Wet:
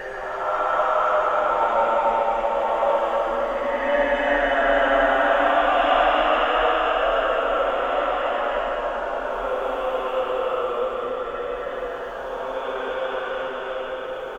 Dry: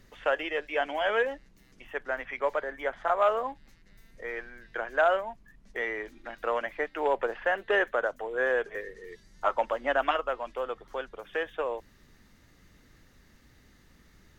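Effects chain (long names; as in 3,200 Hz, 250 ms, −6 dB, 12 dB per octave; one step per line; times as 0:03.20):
reverse bouncing-ball delay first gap 100 ms, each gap 1.6×, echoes 5
extreme stretch with random phases 7.9×, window 0.25 s, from 0:09.35
level +6 dB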